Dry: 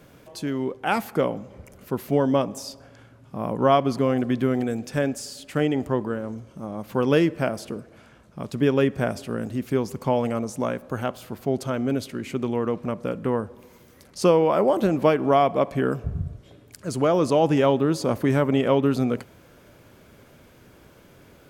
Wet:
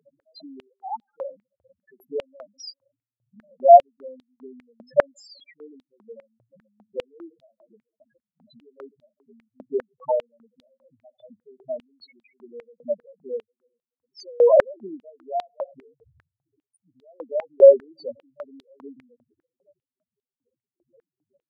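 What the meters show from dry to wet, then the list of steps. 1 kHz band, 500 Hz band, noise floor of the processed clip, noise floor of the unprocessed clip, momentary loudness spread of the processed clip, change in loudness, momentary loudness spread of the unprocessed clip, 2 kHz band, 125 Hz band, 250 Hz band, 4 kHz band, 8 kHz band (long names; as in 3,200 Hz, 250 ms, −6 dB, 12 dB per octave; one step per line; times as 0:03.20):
+1.5 dB, +1.0 dB, below −85 dBFS, −52 dBFS, 24 LU, +3.5 dB, 14 LU, −11.0 dB, below −30 dB, −21.5 dB, below −10 dB, below −15 dB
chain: spectral peaks only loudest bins 2
high-pass on a step sequencer 5 Hz 590–3,700 Hz
level +4 dB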